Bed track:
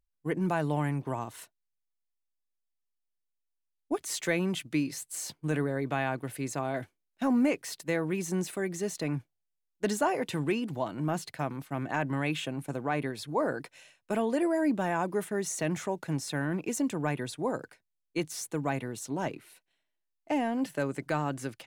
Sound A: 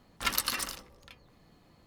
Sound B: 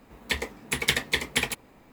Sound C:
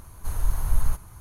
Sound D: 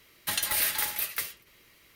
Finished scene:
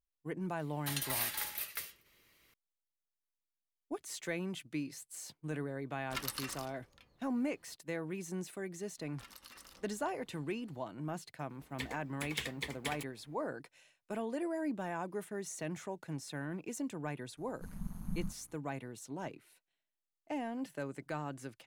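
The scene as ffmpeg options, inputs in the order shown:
-filter_complex "[1:a]asplit=2[s0][s1];[0:a]volume=0.335[s2];[s1]acompressor=threshold=0.00794:ratio=6:attack=3.2:release=140:knee=1:detection=peak[s3];[3:a]tremolo=f=180:d=1[s4];[4:a]atrim=end=1.95,asetpts=PTS-STARTPTS,volume=0.355,afade=t=in:d=0.004:c=hsin,afade=t=out:st=1.946:d=0.004:c=hsin,adelay=590[s5];[s0]atrim=end=1.86,asetpts=PTS-STARTPTS,volume=0.316,afade=t=in:d=0.004:c=hsin,afade=t=out:st=1.856:d=0.004:c=hsin,adelay=5900[s6];[s3]atrim=end=1.86,asetpts=PTS-STARTPTS,volume=0.355,afade=t=in:d=0.004:c=hsin,afade=t=out:st=1.856:d=0.004:c=hsin,adelay=396018S[s7];[2:a]atrim=end=1.92,asetpts=PTS-STARTPTS,volume=0.178,afade=t=in:d=0.004:c=hsin,afade=t=out:st=1.916:d=0.004:c=hsin,adelay=11490[s8];[s4]atrim=end=1.2,asetpts=PTS-STARTPTS,volume=0.158,afade=t=in:d=0.004:c=hsin,afade=t=out:st=1.196:d=0.004:c=hsin,adelay=17370[s9];[s2][s5][s6][s7][s8][s9]amix=inputs=6:normalize=0"

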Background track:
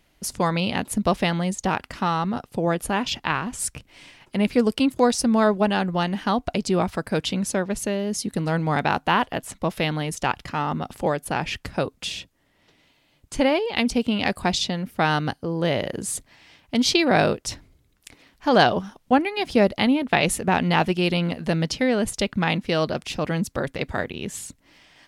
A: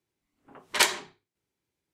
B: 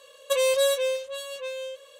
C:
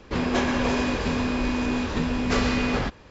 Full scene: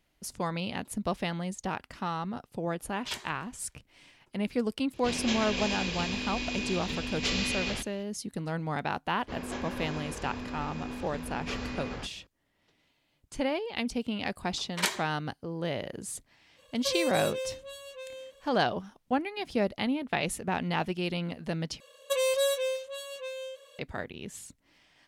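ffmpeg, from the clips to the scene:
-filter_complex "[1:a]asplit=2[s0][s1];[3:a]asplit=2[s2][s3];[2:a]asplit=2[s4][s5];[0:a]volume=0.316[s6];[s0]aecho=1:1:146|292|438|584:0.0708|0.0404|0.023|0.0131[s7];[s2]highshelf=f=2000:t=q:w=1.5:g=10.5[s8];[s1]dynaudnorm=f=150:g=5:m=3.55[s9];[s6]asplit=2[s10][s11];[s10]atrim=end=21.804[s12];[s5]atrim=end=1.99,asetpts=PTS-STARTPTS,volume=0.596[s13];[s11]atrim=start=23.786[s14];[s7]atrim=end=1.93,asetpts=PTS-STARTPTS,volume=0.126,afade=t=in:d=0.004:c=hsin,afade=t=out:st=1.926:d=0.004:c=hsin,adelay=2310[s15];[s8]atrim=end=3.1,asetpts=PTS-STARTPTS,volume=0.266,afade=t=in:d=0.004:c=hsin,afade=t=out:st=3.096:d=0.004:c=hsin,adelay=217413S[s16];[s3]atrim=end=3.1,asetpts=PTS-STARTPTS,volume=0.211,afade=t=in:d=0.004:c=hsin,afade=t=out:st=3.096:d=0.004:c=hsin,adelay=9170[s17];[s9]atrim=end=1.93,asetpts=PTS-STARTPTS,volume=0.282,afade=t=in:d=0.004:c=hsin,afade=t=out:st=1.926:d=0.004:c=hsin,adelay=14030[s18];[s4]atrim=end=1.99,asetpts=PTS-STARTPTS,volume=0.355,afade=t=in:d=0.05,afade=t=out:st=1.94:d=0.05,adelay=16550[s19];[s12][s13]acrossfade=d=0.004:c1=hsin:c2=hsin[s20];[s20][s14]acrossfade=d=0.004:c1=hsin:c2=hsin[s21];[s21][s15][s16][s17][s18][s19]amix=inputs=6:normalize=0"

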